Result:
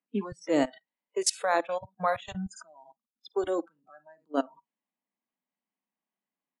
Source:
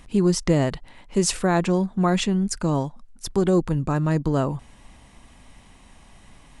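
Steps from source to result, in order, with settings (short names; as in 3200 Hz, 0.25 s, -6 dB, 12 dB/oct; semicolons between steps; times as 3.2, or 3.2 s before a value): low-pass opened by the level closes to 2700 Hz, open at -17 dBFS; steep high-pass 180 Hz 48 dB/oct; on a send: early reflections 53 ms -15 dB, 74 ms -16.5 dB; on the sum: level quantiser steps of 22 dB; spectral noise reduction 29 dB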